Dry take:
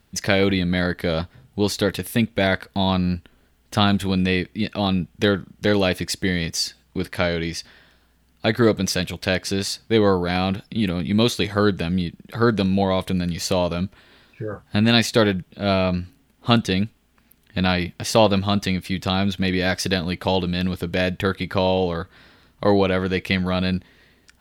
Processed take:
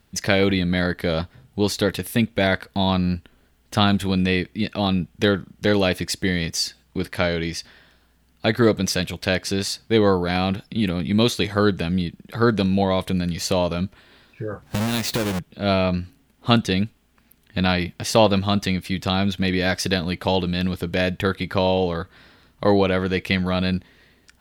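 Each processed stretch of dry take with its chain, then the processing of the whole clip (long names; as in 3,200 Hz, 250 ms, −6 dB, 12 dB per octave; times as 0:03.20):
0:14.62–0:15.39: each half-wave held at its own peak + downward compressor 12 to 1, threshold −20 dBFS
whole clip: no processing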